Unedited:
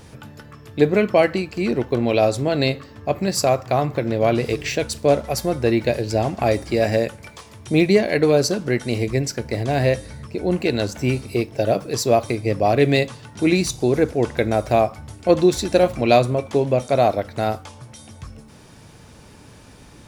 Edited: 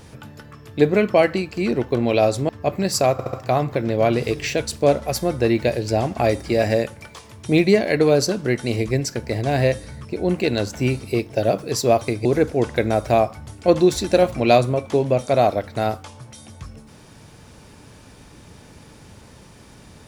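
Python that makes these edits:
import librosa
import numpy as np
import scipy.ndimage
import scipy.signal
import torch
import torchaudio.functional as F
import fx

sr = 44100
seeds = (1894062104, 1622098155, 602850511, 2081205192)

y = fx.edit(x, sr, fx.cut(start_s=2.49, length_s=0.43),
    fx.stutter(start_s=3.55, slice_s=0.07, count=4),
    fx.cut(start_s=12.47, length_s=1.39), tone=tone)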